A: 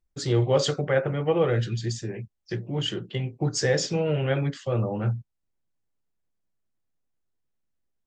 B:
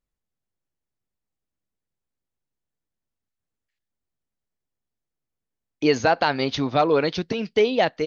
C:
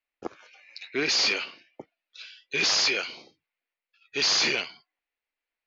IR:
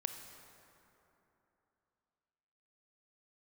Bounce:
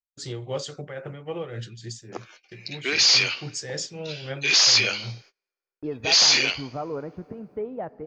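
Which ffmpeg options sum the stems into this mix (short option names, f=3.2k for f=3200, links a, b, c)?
-filter_complex "[0:a]tremolo=f=3.7:d=0.55,volume=-8.5dB[a];[1:a]lowpass=f=1.3k:w=0.5412,lowpass=f=1.3k:w=1.3066,lowshelf=f=140:g=11.5,volume=-16dB,asplit=2[b][c];[c]volume=-9.5dB[d];[2:a]highpass=f=330:p=1,adelay=1900,volume=-1dB,asplit=2[e][f];[f]volume=-17.5dB[g];[3:a]atrim=start_sample=2205[h];[d][g]amix=inputs=2:normalize=0[i];[i][h]afir=irnorm=-1:irlink=0[j];[a][b][e][j]amix=inputs=4:normalize=0,agate=range=-27dB:threshold=-51dB:ratio=16:detection=peak,highshelf=f=2.7k:g=9"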